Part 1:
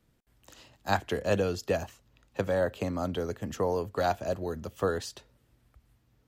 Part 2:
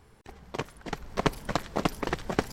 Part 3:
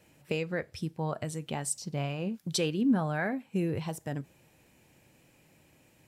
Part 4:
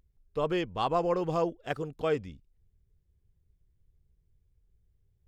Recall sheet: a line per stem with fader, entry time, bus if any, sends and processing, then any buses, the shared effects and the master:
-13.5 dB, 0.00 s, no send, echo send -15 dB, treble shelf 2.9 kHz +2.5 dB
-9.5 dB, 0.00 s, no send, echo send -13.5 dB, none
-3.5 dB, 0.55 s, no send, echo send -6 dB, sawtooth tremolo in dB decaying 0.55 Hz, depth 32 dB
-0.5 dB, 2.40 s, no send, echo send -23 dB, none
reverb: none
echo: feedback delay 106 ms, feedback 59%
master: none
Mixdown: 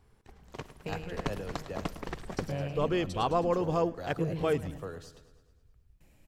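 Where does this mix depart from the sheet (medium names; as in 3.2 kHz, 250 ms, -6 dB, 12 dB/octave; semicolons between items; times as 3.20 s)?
stem 1: missing treble shelf 2.9 kHz +2.5 dB; master: extra bass shelf 130 Hz +6.5 dB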